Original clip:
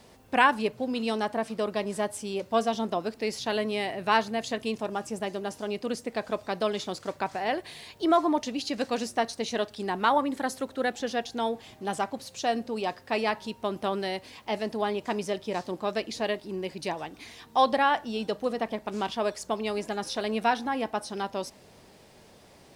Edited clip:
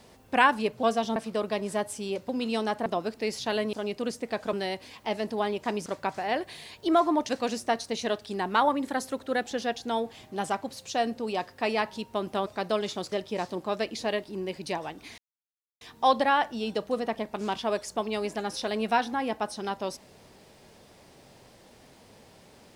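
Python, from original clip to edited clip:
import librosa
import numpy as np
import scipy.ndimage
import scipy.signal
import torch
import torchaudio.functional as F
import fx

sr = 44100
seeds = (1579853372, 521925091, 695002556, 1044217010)

y = fx.edit(x, sr, fx.swap(start_s=0.83, length_s=0.57, other_s=2.53, other_length_s=0.33),
    fx.cut(start_s=3.73, length_s=1.84),
    fx.swap(start_s=6.37, length_s=0.66, other_s=13.95, other_length_s=1.33),
    fx.cut(start_s=8.46, length_s=0.32),
    fx.insert_silence(at_s=17.34, length_s=0.63), tone=tone)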